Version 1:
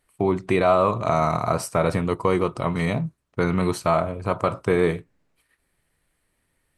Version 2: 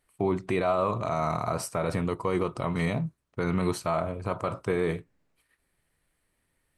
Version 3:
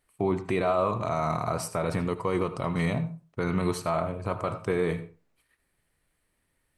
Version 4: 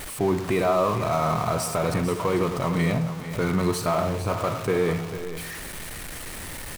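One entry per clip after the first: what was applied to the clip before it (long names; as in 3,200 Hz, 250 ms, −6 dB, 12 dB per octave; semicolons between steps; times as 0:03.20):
brickwall limiter −12 dBFS, peak gain reduction 7 dB; level −3.5 dB
convolution reverb RT60 0.30 s, pre-delay 72 ms, DRR 12.5 dB
converter with a step at zero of −32 dBFS; single-tap delay 447 ms −11.5 dB; level +2 dB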